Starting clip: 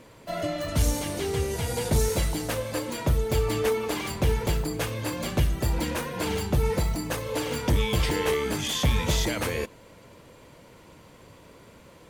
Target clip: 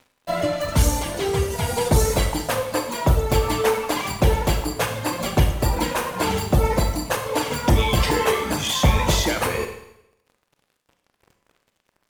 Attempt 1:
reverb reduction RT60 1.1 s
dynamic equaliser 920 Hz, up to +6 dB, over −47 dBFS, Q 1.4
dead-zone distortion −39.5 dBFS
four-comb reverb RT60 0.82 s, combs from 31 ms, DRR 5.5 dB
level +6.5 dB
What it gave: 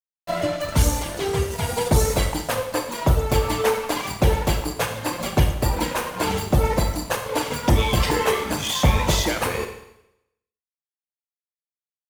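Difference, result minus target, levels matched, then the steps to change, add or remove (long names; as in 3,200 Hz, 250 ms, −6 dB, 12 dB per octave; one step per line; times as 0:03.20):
dead-zone distortion: distortion +7 dB
change: dead-zone distortion −46.5 dBFS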